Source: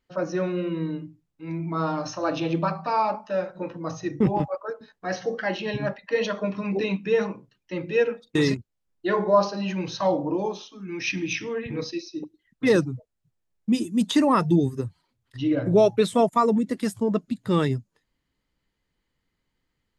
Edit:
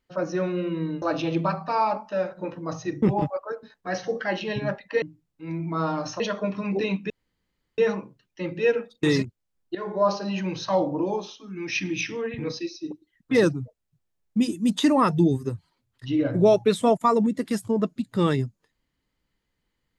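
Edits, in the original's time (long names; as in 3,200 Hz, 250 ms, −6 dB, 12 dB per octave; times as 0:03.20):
0:01.02–0:02.20: move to 0:06.20
0:07.10: splice in room tone 0.68 s
0:09.07–0:09.52: fade in, from −14.5 dB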